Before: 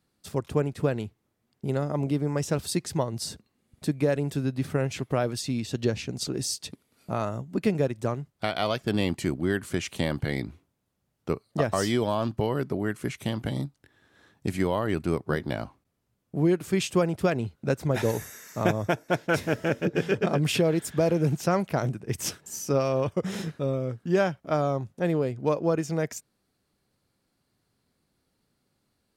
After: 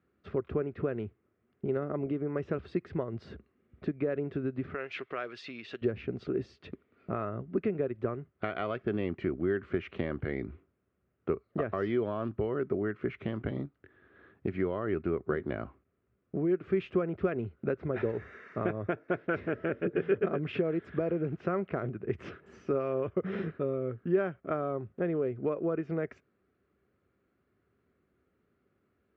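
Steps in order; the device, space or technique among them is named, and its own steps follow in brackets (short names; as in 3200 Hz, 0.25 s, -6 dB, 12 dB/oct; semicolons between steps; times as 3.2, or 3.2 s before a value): bass amplifier (compressor 3:1, threshold -31 dBFS, peak gain reduction 10 dB; speaker cabinet 62–2400 Hz, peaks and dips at 66 Hz +7 dB, 140 Hz -5 dB, 390 Hz +8 dB, 880 Hz -9 dB, 1300 Hz +5 dB); 4.74–5.82 weighting filter ITU-R 468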